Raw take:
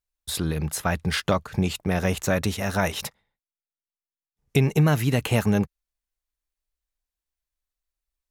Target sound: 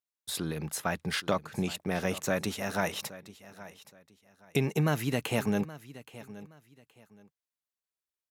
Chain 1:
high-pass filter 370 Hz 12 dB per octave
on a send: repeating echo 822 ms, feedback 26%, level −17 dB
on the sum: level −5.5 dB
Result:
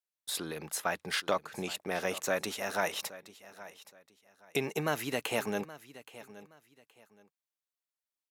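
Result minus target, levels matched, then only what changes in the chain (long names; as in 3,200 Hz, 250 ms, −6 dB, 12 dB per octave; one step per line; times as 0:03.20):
125 Hz band −9.5 dB
change: high-pass filter 160 Hz 12 dB per octave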